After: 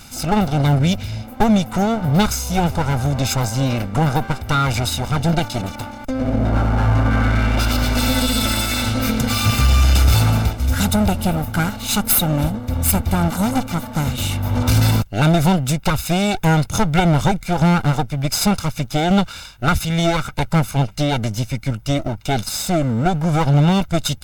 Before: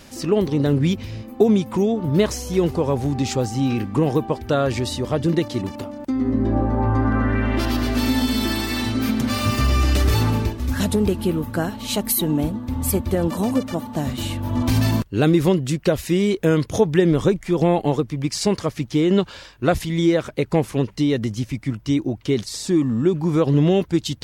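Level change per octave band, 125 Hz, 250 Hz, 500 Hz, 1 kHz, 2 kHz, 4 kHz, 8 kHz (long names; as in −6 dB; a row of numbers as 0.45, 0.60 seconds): +5.0, +0.5, −3.0, +7.0, +6.0, +5.5, +7.0 decibels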